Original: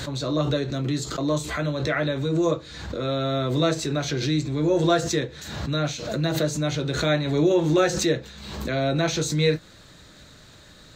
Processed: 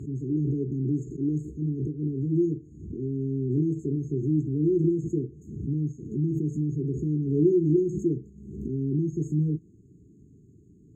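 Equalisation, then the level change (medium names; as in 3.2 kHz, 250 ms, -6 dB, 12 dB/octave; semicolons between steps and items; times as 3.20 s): high-pass 87 Hz; brick-wall FIR band-stop 440–6400 Hz; distance through air 260 m; 0.0 dB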